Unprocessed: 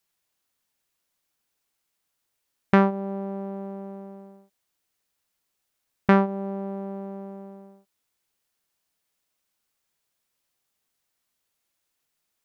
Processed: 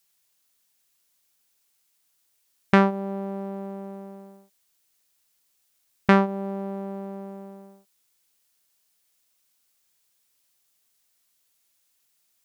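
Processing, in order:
high-shelf EQ 2,800 Hz +10 dB

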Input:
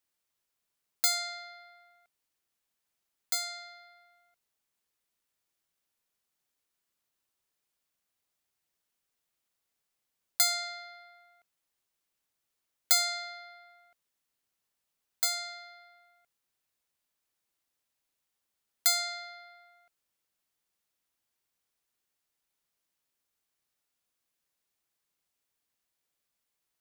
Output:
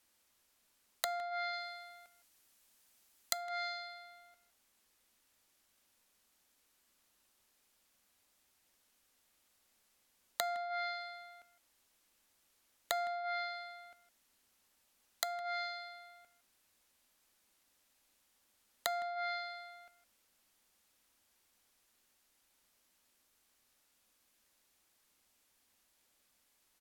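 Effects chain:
treble cut that deepens with the level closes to 690 Hz, closed at −31 dBFS
0:01.53–0:03.37: high-shelf EQ 4,600 Hz +6 dB
in parallel at 0 dB: downward compressor, threshold −44 dBFS, peak gain reduction 12.5 dB
on the sum: hard clipping −24.5 dBFS, distortion −12 dB
tuned comb filter 830 Hz, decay 0.35 s, mix 40%
far-end echo of a speakerphone 160 ms, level −16 dB
on a send at −19.5 dB: convolution reverb RT60 0.10 s, pre-delay 3 ms
on the sum: level +8.5 dB

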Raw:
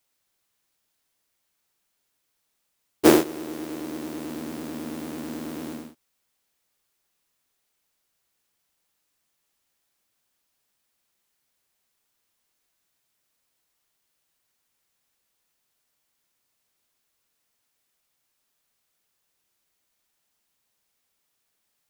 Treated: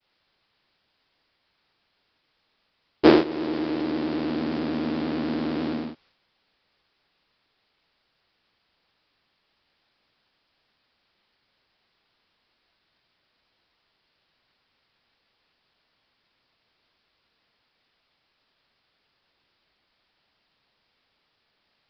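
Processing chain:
mu-law and A-law mismatch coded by mu
in parallel at +1.5 dB: downward compressor, threshold −29 dBFS, peak gain reduction 18 dB
on the sum: downward expander −53 dBFS
downsampling to 11,025 Hz
level −1 dB

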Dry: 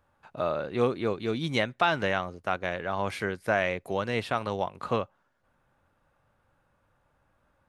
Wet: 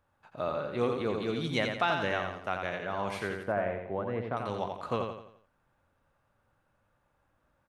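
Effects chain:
0:01.00–0:01.68: transient designer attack +2 dB, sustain +6 dB
0:03.43–0:04.37: low-pass filter 1,200 Hz 12 dB per octave
on a send: repeating echo 86 ms, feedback 42%, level −5 dB
on the sum: level −4.5 dB

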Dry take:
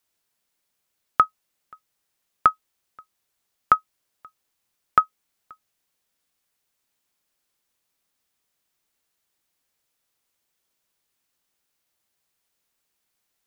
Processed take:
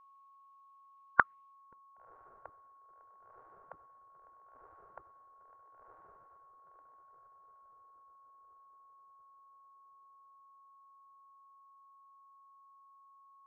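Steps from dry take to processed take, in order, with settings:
on a send: feedback delay with all-pass diffusion 1,043 ms, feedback 51%, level −4 dB
on the sum: dynamic equaliser 1,700 Hz, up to +4 dB, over −38 dBFS, Q 1
low-pass filter sweep 1,500 Hz → 260 Hz, 0:01.46–0:02.06
gate on every frequency bin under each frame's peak −15 dB weak
steady tone 1,100 Hz −56 dBFS
level −2.5 dB

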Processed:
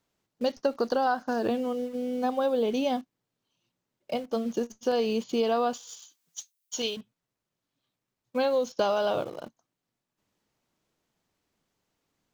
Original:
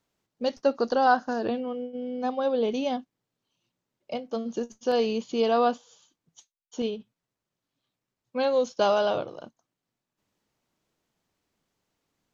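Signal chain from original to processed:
0:05.73–0:06.97: spectral tilt +4.5 dB per octave
in parallel at −11 dB: bit reduction 7 bits
on the sum: downward compressor 6 to 1, threshold −22 dBFS, peak gain reduction 9 dB

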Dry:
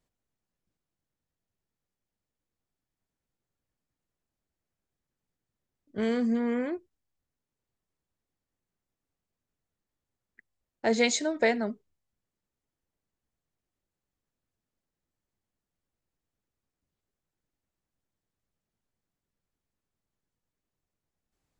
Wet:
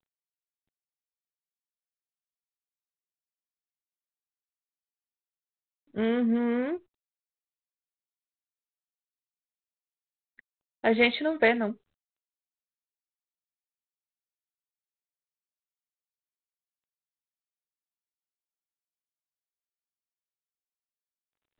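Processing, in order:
0:10.85–0:11.71: high-shelf EQ 2,300 Hz +6.5 dB
level +1.5 dB
G.726 32 kbit/s 8,000 Hz

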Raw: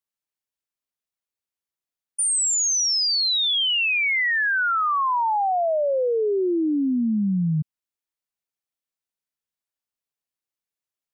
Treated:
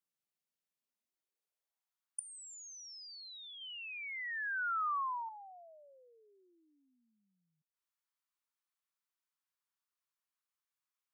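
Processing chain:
0:03.61–0:05.29: parametric band 1,400 Hz +10 dB 1.6 octaves
gate with flip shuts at −22 dBFS, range −25 dB
high-pass filter sweep 160 Hz → 1,100 Hz, 0:00.79–0:02.01
level −4.5 dB

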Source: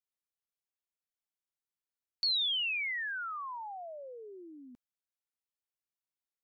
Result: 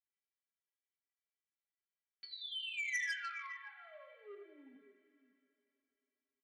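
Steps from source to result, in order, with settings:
formant filter i
stiff-string resonator 200 Hz, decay 0.23 s, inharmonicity 0.008
multi-tap delay 83/156/177/563 ms −9/−18.5/−16.5/−15 dB
coupled-rooms reverb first 0.69 s, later 3.5 s, from −17 dB, DRR 3.5 dB
brickwall limiter −49 dBFS, peak gain reduction 11 dB
low-pass filter 4,000 Hz
flat-topped bell 1,000 Hz +13.5 dB 2.3 octaves
comb filter 7.2 ms, depth 35%
saturating transformer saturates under 3,700 Hz
level +13 dB

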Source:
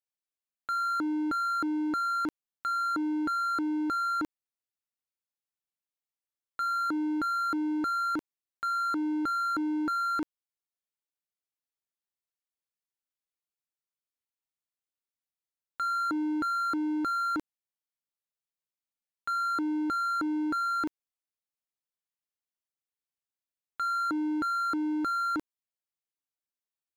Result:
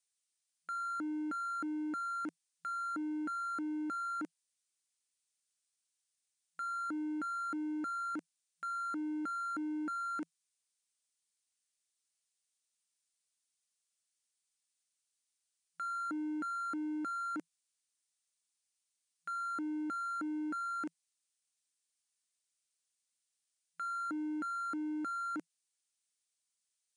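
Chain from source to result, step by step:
graphic EQ with 15 bands 400 Hz −7 dB, 1,000 Hz −10 dB, 4,000 Hz −12 dB
background noise violet −71 dBFS
brick-wall band-pass 170–10,000 Hz
level −4.5 dB

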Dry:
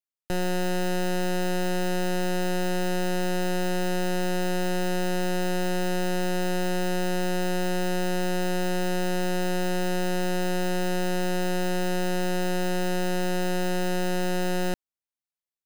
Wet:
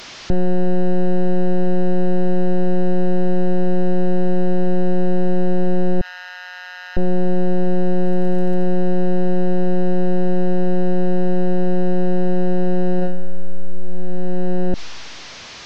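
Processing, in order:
linear delta modulator 32 kbit/s, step −54 dBFS
0:06.01–0:06.97: Butterworth high-pass 1,100 Hz 36 dB per octave
0:07.99–0:08.70: surface crackle 45 per second −49 dBFS
0:12.97–0:13.66: thrown reverb, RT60 1.6 s, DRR 3.5 dB
boost into a limiter +32 dB
level −8 dB

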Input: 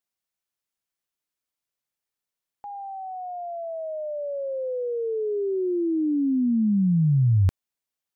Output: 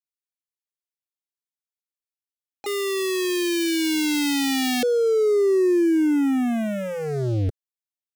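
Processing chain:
0:02.66–0:04.83: sub-harmonics by changed cycles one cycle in 2, inverted
Chebyshev high-pass filter 170 Hz, order 2
parametric band 590 Hz −8.5 dB 1.7 octaves
leveller curve on the samples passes 5
phaser with its sweep stopped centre 410 Hz, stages 4

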